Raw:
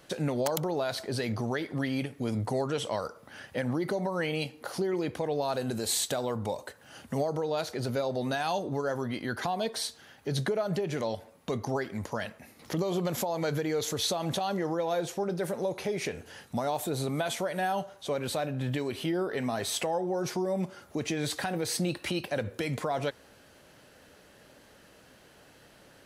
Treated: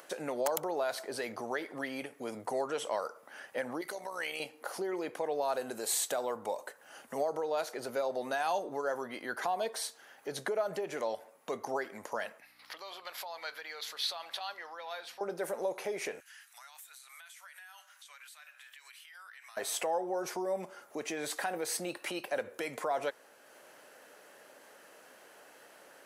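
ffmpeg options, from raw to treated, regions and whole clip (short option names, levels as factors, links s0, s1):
-filter_complex "[0:a]asettb=1/sr,asplit=3[s0][s1][s2];[s0]atrim=end=3.814[s3];[s1]atrim=start=3.81:end=4.4,asetpts=PTS-STARTPTS,afade=t=in:d=0.004:c=qsin,afade=t=out:st=0.586:d=0.004:c=qsin,tiltshelf=f=1400:g=-8.5,tremolo=f=66:d=0.519[s4];[s2]atrim=start=4.396[s5];[s3][s4]acrossfade=d=0.004:c1=hsin:c2=qsin[s6];[s6][s5]acrossfade=d=0.004:c1=qsin:c2=hsin,asettb=1/sr,asplit=3[s7][s8][s9];[s7]atrim=end=12.404[s10];[s8]atrim=start=12.4:end=15.21,asetpts=PTS-STARTPTS,afade=t=in:d=0.004:c=qsin,afade=t=out:st=2.806:d=0.004:c=qsin,highpass=1300,highshelf=f=5500:t=q:w=3:g=-7,aeval=exprs='val(0)+0.00141*(sin(2*PI*60*n/s)+sin(2*PI*2*60*n/s)/2+sin(2*PI*3*60*n/s)/3+sin(2*PI*4*60*n/s)/4+sin(2*PI*5*60*n/s)/5)':c=same[s11];[s9]atrim=start=15.206[s12];[s10][s11]acrossfade=d=0.004:c1=hsin:c2=qsin[s13];[s13][s12]acrossfade=d=0.004:c1=qsin:c2=hsin,asettb=1/sr,asplit=3[s14][s15][s16];[s14]atrim=end=16.204[s17];[s15]atrim=start=16.2:end=19.57,asetpts=PTS-STARTPTS,afade=t=in:d=0.004:c=qsin,afade=t=out:st=3.366:d=0.004:c=qsin,highpass=f=1500:w=0.5412,highpass=f=1500:w=1.3066,acompressor=threshold=0.00501:ratio=12:attack=3.2:release=140:knee=1:detection=peak[s18];[s16]atrim=start=19.566[s19];[s17][s18]acrossfade=d=0.004:c1=hsin:c2=qsin[s20];[s20][s19]acrossfade=d=0.004:c1=qsin:c2=hsin,highpass=480,equalizer=f=3900:t=o:w=1.2:g=-7.5,acompressor=mode=upward:threshold=0.00316:ratio=2.5"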